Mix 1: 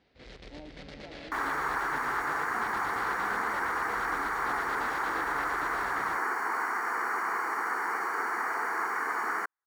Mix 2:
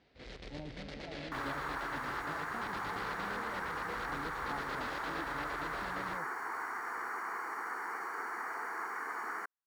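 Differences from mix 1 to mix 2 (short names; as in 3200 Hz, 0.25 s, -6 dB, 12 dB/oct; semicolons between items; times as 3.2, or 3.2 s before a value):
speech: remove steep high-pass 200 Hz 72 dB/oct; second sound -8.5 dB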